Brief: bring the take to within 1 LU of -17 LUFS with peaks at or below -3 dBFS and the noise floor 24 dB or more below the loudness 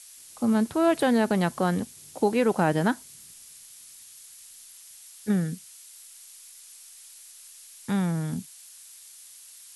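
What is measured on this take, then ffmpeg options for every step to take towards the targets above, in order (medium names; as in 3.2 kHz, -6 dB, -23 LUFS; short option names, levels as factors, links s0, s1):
noise floor -49 dBFS; noise floor target -50 dBFS; loudness -26.0 LUFS; peak level -10.5 dBFS; loudness target -17.0 LUFS
-> -af "afftdn=nr=6:nf=-49"
-af "volume=2.82,alimiter=limit=0.708:level=0:latency=1"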